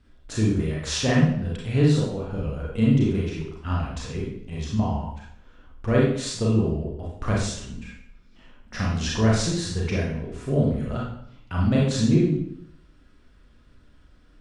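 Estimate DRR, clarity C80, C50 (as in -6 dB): -5.0 dB, 5.5 dB, 1.0 dB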